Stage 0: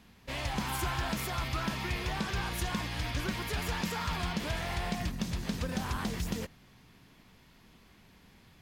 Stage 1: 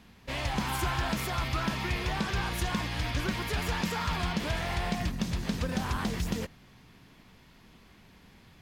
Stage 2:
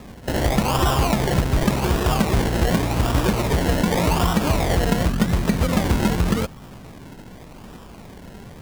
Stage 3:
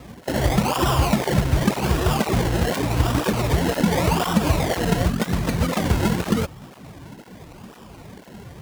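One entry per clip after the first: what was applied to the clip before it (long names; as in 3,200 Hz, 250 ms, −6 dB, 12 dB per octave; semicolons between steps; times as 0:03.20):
high-shelf EQ 6,900 Hz −4 dB; level +3 dB
in parallel at +2 dB: downward compressor, threshold −39 dBFS, peak gain reduction 13.5 dB; on the sum: sample-and-hold swept by an LFO 29×, swing 60% 0.87 Hz; level +9 dB
through-zero flanger with one copy inverted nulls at 2 Hz, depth 5.3 ms; level +2.5 dB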